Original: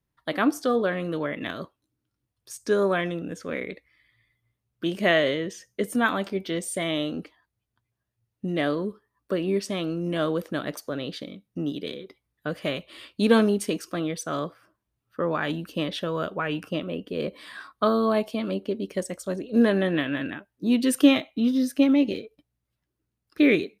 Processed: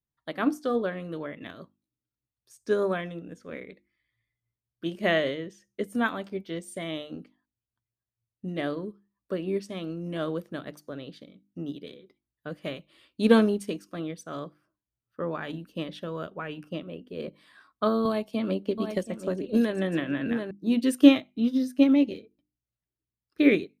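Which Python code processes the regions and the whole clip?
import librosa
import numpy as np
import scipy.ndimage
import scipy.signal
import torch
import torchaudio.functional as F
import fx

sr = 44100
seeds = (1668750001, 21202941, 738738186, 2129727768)

y = fx.chain(x, sr, fx.echo_single(ms=726, db=-11.0),
    fx.band_squash(depth_pct=100), at=(18.05, 20.51))
y = fx.low_shelf(y, sr, hz=380.0, db=4.5)
y = fx.hum_notches(y, sr, base_hz=50, count=7)
y = fx.upward_expand(y, sr, threshold_db=-39.0, expansion=1.5)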